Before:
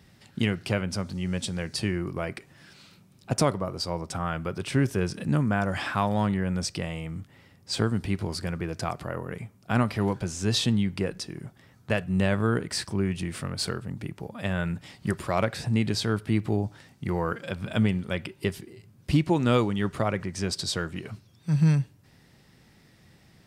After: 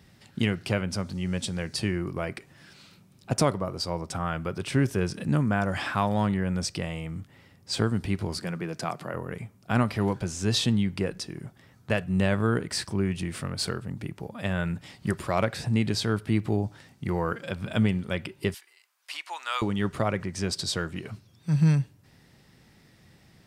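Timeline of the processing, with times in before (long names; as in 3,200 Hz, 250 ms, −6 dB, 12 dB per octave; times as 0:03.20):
0:08.38–0:09.14: Chebyshev high-pass filter 150 Hz, order 3
0:18.54–0:19.62: high-pass filter 930 Hz 24 dB per octave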